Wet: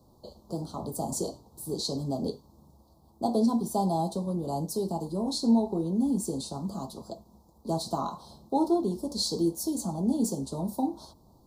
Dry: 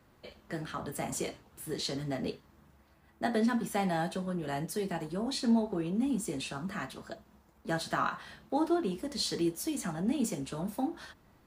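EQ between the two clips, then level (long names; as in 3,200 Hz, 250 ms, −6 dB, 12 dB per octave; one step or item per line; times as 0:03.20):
Chebyshev band-stop filter 970–4,200 Hz, order 3
+4.5 dB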